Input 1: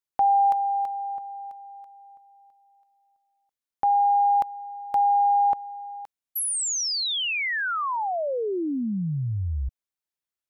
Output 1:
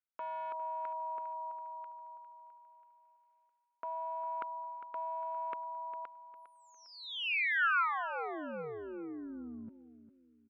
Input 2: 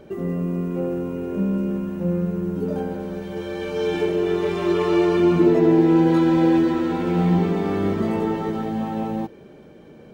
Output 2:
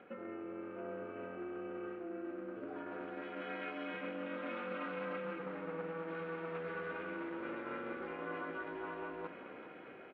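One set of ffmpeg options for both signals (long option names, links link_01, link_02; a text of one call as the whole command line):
ffmpeg -i in.wav -af "aeval=exprs='clip(val(0),-1,0.141)':channel_layout=same,dynaudnorm=framelen=210:gausssize=5:maxgain=3.5dB,aeval=exprs='val(0)*sin(2*PI*160*n/s)':channel_layout=same,areverse,acompressor=threshold=-30dB:ratio=8:attack=2.2:release=349:knee=6:detection=rms,areverse,highpass=360,equalizer=frequency=400:width_type=q:width=4:gain=-4,equalizer=frequency=620:width_type=q:width=4:gain=-10,equalizer=frequency=900:width_type=q:width=4:gain=-5,equalizer=frequency=1400:width_type=q:width=4:gain=9,equalizer=frequency=2400:width_type=q:width=4:gain=4,lowpass=frequency=2800:width=0.5412,lowpass=frequency=2800:width=1.3066,aecho=1:1:404|808|1212|1616:0.224|0.0806|0.029|0.0104" out.wav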